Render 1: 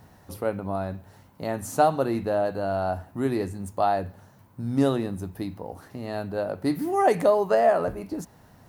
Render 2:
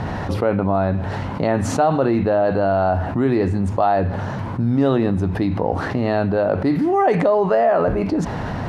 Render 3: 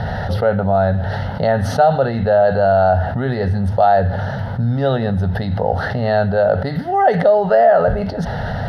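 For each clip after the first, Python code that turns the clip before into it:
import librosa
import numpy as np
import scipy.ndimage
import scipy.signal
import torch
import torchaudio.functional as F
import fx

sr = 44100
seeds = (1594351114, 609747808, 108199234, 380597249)

y1 = scipy.signal.sosfilt(scipy.signal.butter(2, 3200.0, 'lowpass', fs=sr, output='sos'), x)
y1 = fx.env_flatten(y1, sr, amount_pct=70)
y1 = F.gain(torch.from_numpy(y1), 1.5).numpy()
y2 = fx.fixed_phaser(y1, sr, hz=1600.0, stages=8)
y2 = F.gain(torch.from_numpy(y2), 5.5).numpy()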